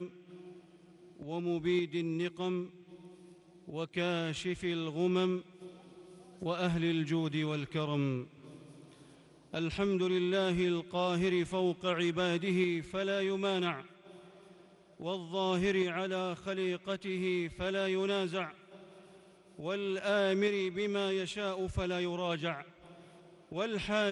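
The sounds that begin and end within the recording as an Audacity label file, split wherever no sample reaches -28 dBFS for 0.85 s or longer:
1.380000	2.570000	sound
3.790000	5.350000	sound
6.430000	8.180000	sound
9.540000	13.730000	sound
15.070000	18.450000	sound
19.680000	22.540000	sound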